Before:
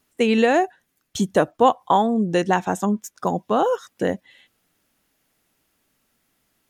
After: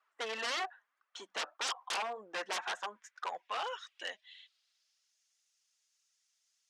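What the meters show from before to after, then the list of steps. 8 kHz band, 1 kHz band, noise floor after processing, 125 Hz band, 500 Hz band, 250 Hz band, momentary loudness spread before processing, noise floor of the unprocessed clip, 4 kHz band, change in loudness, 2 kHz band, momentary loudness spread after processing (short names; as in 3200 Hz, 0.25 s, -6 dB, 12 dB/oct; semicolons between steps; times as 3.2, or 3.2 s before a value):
-8.0 dB, -18.0 dB, -82 dBFS, under -40 dB, -24.0 dB, -36.5 dB, 9 LU, -71 dBFS, -4.5 dB, -17.5 dB, -10.0 dB, 15 LU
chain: flange 1.8 Hz, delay 1.4 ms, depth 3.5 ms, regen -9%; in parallel at -9.5 dB: soft clip -19 dBFS, distortion -11 dB; on the sum: band-pass sweep 1200 Hz -> 6100 Hz, 2.43–5.17; wavefolder -32 dBFS; BPF 600–7900 Hz; gain +3 dB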